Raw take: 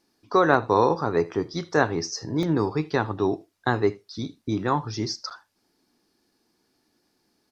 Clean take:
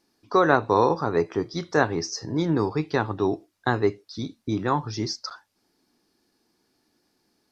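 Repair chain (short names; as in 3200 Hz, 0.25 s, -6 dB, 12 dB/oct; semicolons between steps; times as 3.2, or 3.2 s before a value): interpolate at 0.54/2.43/4.42, 1.6 ms; inverse comb 78 ms -22.5 dB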